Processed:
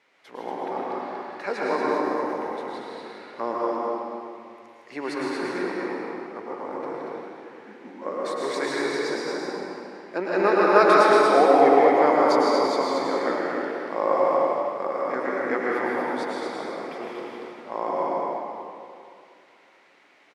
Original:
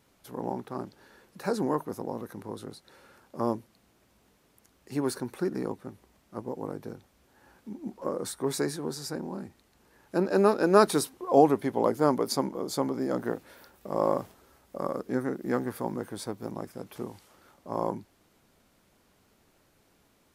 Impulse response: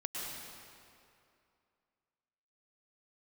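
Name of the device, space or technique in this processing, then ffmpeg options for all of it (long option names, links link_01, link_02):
station announcement: -filter_complex "[0:a]highpass=440,lowpass=4200,equalizer=frequency=2100:width_type=o:width=0.54:gain=10,aecho=1:1:157.4|233.2:0.355|0.631[link_01];[1:a]atrim=start_sample=2205[link_02];[link_01][link_02]afir=irnorm=-1:irlink=0,volume=5dB"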